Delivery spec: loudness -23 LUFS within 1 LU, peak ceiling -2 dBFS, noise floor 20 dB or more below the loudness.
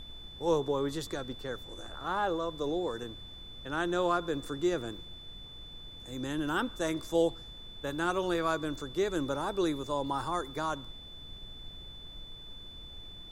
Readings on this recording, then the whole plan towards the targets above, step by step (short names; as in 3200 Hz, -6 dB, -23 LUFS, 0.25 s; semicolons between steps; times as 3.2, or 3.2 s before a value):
steady tone 3500 Hz; tone level -47 dBFS; noise floor -48 dBFS; noise floor target -53 dBFS; loudness -33.0 LUFS; peak -16.5 dBFS; loudness target -23.0 LUFS
-> notch 3500 Hz, Q 30; noise print and reduce 6 dB; gain +10 dB